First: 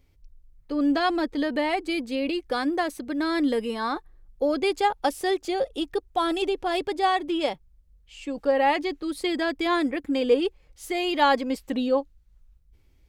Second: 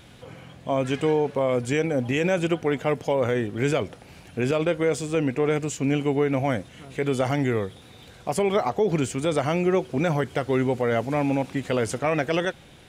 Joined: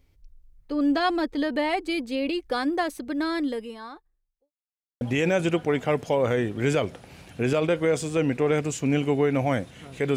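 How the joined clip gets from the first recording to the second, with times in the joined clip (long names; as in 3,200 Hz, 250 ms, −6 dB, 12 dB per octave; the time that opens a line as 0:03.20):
first
0:03.19–0:04.52: fade out quadratic
0:04.52–0:05.01: silence
0:05.01: continue with second from 0:01.99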